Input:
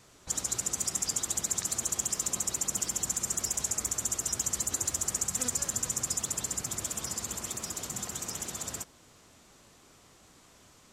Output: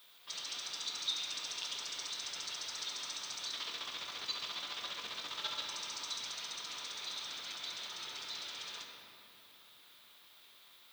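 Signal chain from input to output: treble shelf 3 kHz +9 dB; 3.51–5.64 s: compressor with a negative ratio -31 dBFS, ratio -1; ring modulator 1.1 kHz; four-pole ladder low-pass 3.9 kHz, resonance 70%; peaking EQ 800 Hz -4 dB 0.4 oct; simulated room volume 120 m³, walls hard, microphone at 0.39 m; added noise violet -68 dBFS; high-pass 330 Hz 6 dB/octave; trim +2.5 dB

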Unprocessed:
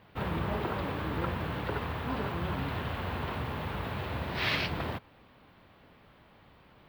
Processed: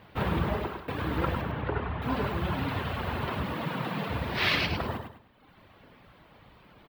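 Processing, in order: reverb removal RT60 1.1 s; 0.47–0.88 s: fade out; 1.41–2.02 s: distance through air 370 m; 3.43–4.09 s: frequency shift +68 Hz; feedback delay 103 ms, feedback 31%, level -6.5 dB; trim +5 dB

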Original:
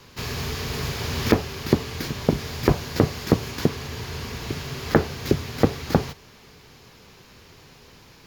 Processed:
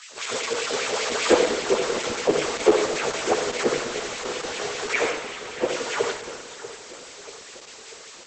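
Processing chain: frequency axis rescaled in octaves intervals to 114%; 1.24–2.85 s: high-pass 110 Hz 12 dB/octave; transient shaper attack -4 dB, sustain +2 dB; 5.10–5.68 s: four-pole ladder low-pass 3.9 kHz, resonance 35%; in parallel at -8.5 dB: Schmitt trigger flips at -36.5 dBFS; on the sum: added noise blue -44 dBFS; LFO high-pass sine 5.1 Hz 390–2400 Hz; two-band feedback delay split 1.9 kHz, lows 640 ms, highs 171 ms, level -13 dB; on a send at -5 dB: reverberation RT60 0.80 s, pre-delay 53 ms; on the sum: trim +5.5 dB; Opus 10 kbps 48 kHz

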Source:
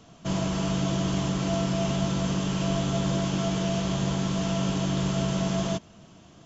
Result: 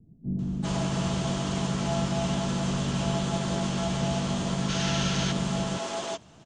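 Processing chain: harmony voices +4 st -7 dB; time-frequency box 4.30–4.93 s, 1.3–6.8 kHz +7 dB; bands offset in time lows, highs 390 ms, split 320 Hz; trim -1 dB

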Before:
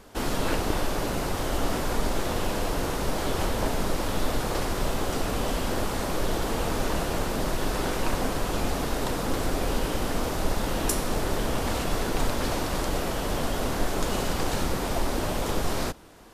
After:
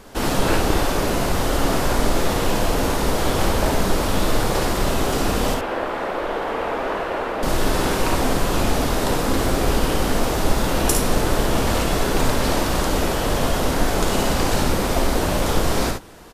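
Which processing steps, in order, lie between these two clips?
5.54–7.43 s: three-band isolator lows -18 dB, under 330 Hz, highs -22 dB, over 2.8 kHz; early reflections 54 ms -6 dB, 69 ms -7.5 dB; trim +6 dB

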